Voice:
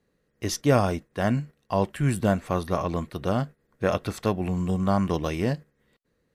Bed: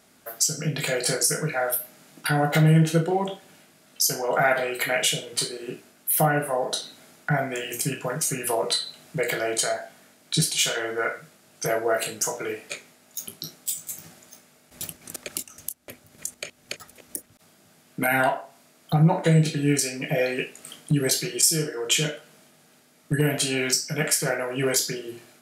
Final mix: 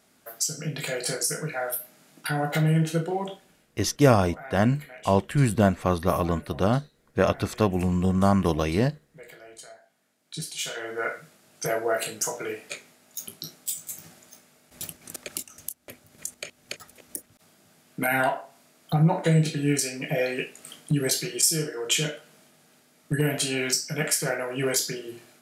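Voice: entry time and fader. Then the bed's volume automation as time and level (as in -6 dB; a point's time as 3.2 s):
3.35 s, +2.5 dB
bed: 3.31 s -4.5 dB
4.12 s -21 dB
9.8 s -21 dB
11.1 s -2 dB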